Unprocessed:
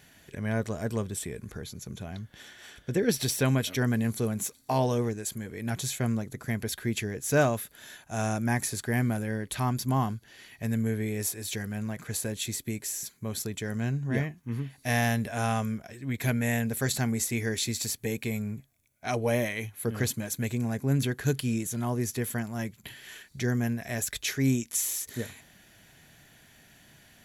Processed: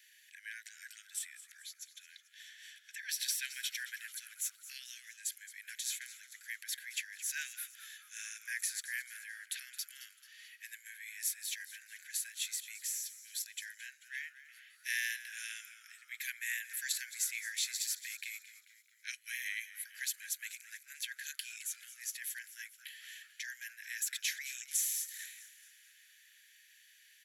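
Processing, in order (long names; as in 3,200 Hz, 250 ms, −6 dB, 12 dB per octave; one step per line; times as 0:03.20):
Butterworth high-pass 1,600 Hz 96 dB per octave
on a send: echo with shifted repeats 219 ms, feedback 49%, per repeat −80 Hz, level −15 dB
on the sum: level −4 dB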